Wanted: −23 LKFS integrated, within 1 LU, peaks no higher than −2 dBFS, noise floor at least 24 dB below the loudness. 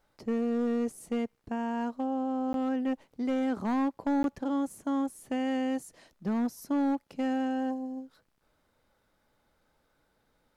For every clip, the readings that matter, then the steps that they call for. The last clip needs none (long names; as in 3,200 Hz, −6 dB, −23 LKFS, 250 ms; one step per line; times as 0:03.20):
share of clipped samples 1.4%; peaks flattened at −23.0 dBFS; number of dropouts 2; longest dropout 12 ms; integrated loudness −31.5 LKFS; sample peak −23.0 dBFS; target loudness −23.0 LKFS
→ clipped peaks rebuilt −23 dBFS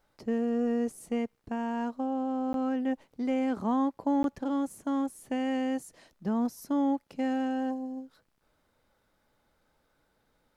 share of clipped samples 0.0%; number of dropouts 2; longest dropout 12 ms
→ repair the gap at 0:02.53/0:04.23, 12 ms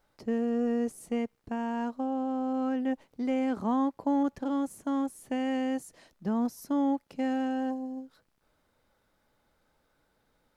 number of dropouts 0; integrated loudness −31.0 LKFS; sample peak −17.5 dBFS; target loudness −23.0 LKFS
→ level +8 dB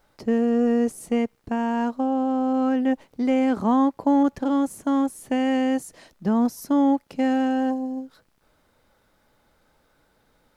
integrated loudness −23.0 LKFS; sample peak −9.5 dBFS; background noise floor −65 dBFS